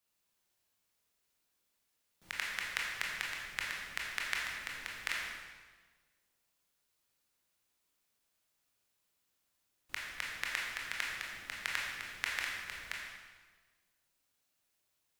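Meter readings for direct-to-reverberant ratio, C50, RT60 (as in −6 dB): −3.5 dB, 0.5 dB, 1.4 s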